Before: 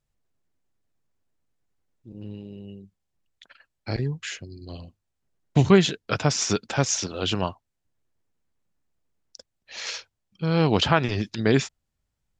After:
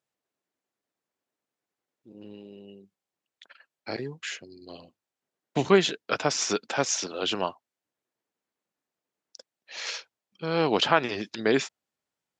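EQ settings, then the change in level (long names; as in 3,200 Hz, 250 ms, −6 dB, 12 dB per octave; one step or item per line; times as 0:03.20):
high-pass filter 310 Hz 12 dB per octave
high-shelf EQ 5,700 Hz −4.5 dB
0.0 dB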